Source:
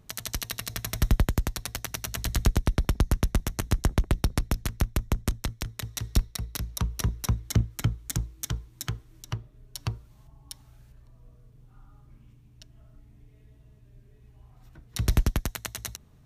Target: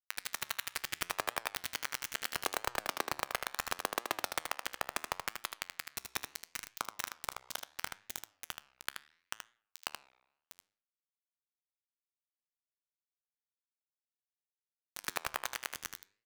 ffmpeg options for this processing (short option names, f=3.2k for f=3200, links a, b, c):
-filter_complex "[0:a]highpass=f=110:w=0.5412,highpass=f=110:w=1.3066,lowshelf=f=410:g=-9.5,acrossover=split=220|790|3800[a][b][c][d];[a]acompressor=threshold=-47dB:ratio=6[e];[e][b][c][d]amix=inputs=4:normalize=0,asplit=2[f][g];[g]highpass=f=720:p=1,volume=13dB,asoftclip=type=tanh:threshold=-11dB[h];[f][h]amix=inputs=2:normalize=0,lowpass=f=2.1k:p=1,volume=-6dB,aeval=exprs='val(0)+0.00398*(sin(2*PI*50*n/s)+sin(2*PI*2*50*n/s)/2+sin(2*PI*3*50*n/s)/3+sin(2*PI*4*50*n/s)/4+sin(2*PI*5*50*n/s)/5)':c=same,acrusher=bits=3:mix=0:aa=0.000001,flanger=delay=8:depth=8.3:regen=89:speed=0.74:shape=triangular,aecho=1:1:78:0.473,volume=1dB"